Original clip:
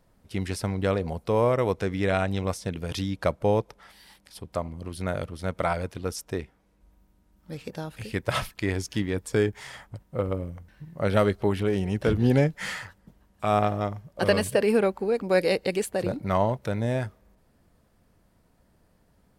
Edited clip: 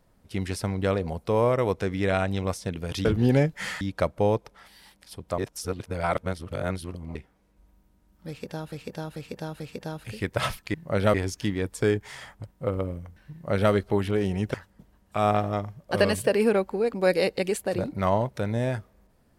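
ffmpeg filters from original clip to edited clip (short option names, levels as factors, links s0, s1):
-filter_complex "[0:a]asplit=11[s0][s1][s2][s3][s4][s5][s6][s7][s8][s9][s10];[s0]atrim=end=3.052[s11];[s1]atrim=start=12.058:end=12.822[s12];[s2]atrim=start=3.048:end=4.622[s13];[s3]atrim=start=4.618:end=6.392,asetpts=PTS-STARTPTS,areverse[s14];[s4]atrim=start=6.388:end=7.962[s15];[s5]atrim=start=7.518:end=7.962[s16];[s6]atrim=start=7.518:end=7.962[s17];[s7]atrim=start=7.518:end=8.662[s18];[s8]atrim=start=10.838:end=11.242[s19];[s9]atrim=start=8.658:end=12.062[s20];[s10]atrim=start=12.818[s21];[s11][s12]acrossfade=d=0.004:c1=hsin:c2=hsin[s22];[s22][s13]acrossfade=d=0.004:c1=hsin:c2=hsin[s23];[s23][s14]acrossfade=d=0.004:c1=hsin:c2=hsin[s24];[s24][s15]acrossfade=d=0.004:c1=hsin:c2=hsin[s25];[s25][s16]acrossfade=d=0.004:c1=hsin:c2=hsin[s26];[s26][s17]acrossfade=d=0.004:c1=hsin:c2=hsin[s27];[s27][s18]acrossfade=d=0.004:c1=hsin:c2=hsin[s28];[s28][s19]acrossfade=d=0.004:c1=hsin:c2=hsin[s29];[s29][s20]acrossfade=d=0.004:c1=hsin:c2=hsin[s30];[s30][s21]acrossfade=d=0.004:c1=hsin:c2=hsin"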